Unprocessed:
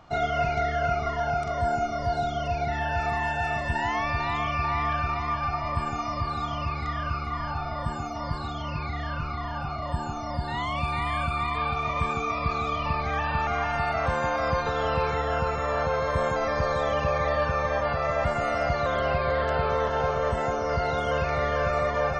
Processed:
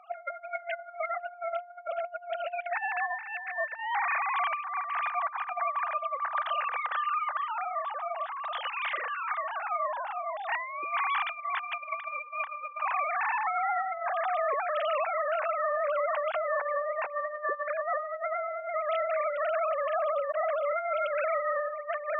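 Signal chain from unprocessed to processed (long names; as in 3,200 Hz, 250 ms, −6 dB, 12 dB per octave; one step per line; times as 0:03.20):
three sine waves on the formant tracks
high-pass filter 620 Hz 6 dB per octave
compressor whose output falls as the input rises −32 dBFS, ratio −0.5
level +1 dB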